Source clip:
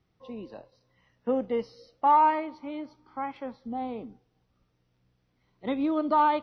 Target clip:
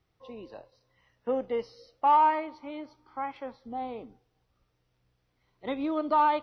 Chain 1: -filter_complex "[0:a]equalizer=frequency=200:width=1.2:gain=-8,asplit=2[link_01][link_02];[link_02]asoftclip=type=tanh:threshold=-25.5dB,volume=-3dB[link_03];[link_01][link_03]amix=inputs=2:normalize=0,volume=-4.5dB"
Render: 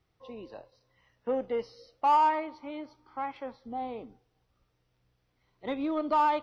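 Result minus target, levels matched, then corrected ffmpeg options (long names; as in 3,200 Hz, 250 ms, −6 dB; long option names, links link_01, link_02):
soft clipping: distortion +11 dB
-filter_complex "[0:a]equalizer=frequency=200:width=1.2:gain=-8,asplit=2[link_01][link_02];[link_02]asoftclip=type=tanh:threshold=-16dB,volume=-3dB[link_03];[link_01][link_03]amix=inputs=2:normalize=0,volume=-4.5dB"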